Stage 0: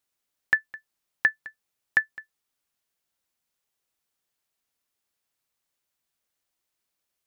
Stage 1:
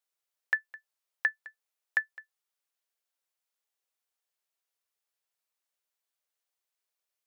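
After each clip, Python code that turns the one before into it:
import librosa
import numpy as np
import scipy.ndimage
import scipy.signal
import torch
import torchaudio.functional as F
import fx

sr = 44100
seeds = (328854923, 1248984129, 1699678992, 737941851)

y = scipy.signal.sosfilt(scipy.signal.cheby2(4, 40, 200.0, 'highpass', fs=sr, output='sos'), x)
y = F.gain(torch.from_numpy(y), -6.0).numpy()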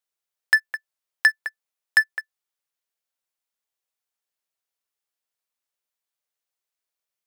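y = fx.leveller(x, sr, passes=3)
y = F.gain(torch.from_numpy(y), 5.5).numpy()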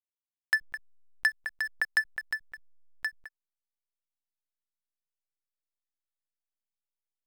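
y = fx.backlash(x, sr, play_db=-46.5)
y = y + 10.0 ** (-7.0 / 20.0) * np.pad(y, (int(1076 * sr / 1000.0), 0))[:len(y)]
y = fx.pre_swell(y, sr, db_per_s=25.0)
y = F.gain(torch.from_numpy(y), -9.0).numpy()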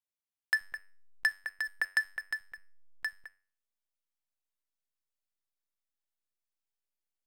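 y = fx.comb_fb(x, sr, f0_hz=95.0, decay_s=0.43, harmonics='all', damping=0.0, mix_pct=50)
y = F.gain(torch.from_numpy(y), 2.5).numpy()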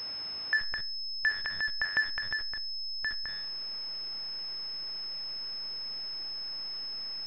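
y = x + 0.5 * 10.0 ** (-45.0 / 20.0) * np.sign(x)
y = fx.transient(y, sr, attack_db=-7, sustain_db=4)
y = fx.pwm(y, sr, carrier_hz=5200.0)
y = F.gain(torch.from_numpy(y), 6.5).numpy()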